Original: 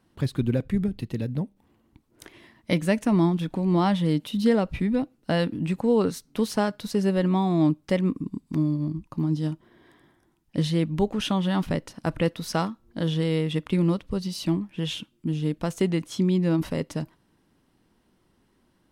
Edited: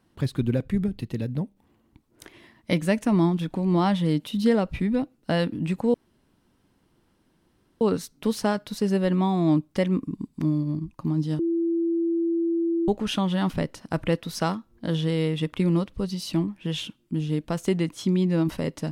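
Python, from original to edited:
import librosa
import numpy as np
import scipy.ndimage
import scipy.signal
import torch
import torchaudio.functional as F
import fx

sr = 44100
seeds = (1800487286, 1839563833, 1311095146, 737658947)

y = fx.edit(x, sr, fx.insert_room_tone(at_s=5.94, length_s=1.87),
    fx.bleep(start_s=9.52, length_s=1.49, hz=335.0, db=-21.0), tone=tone)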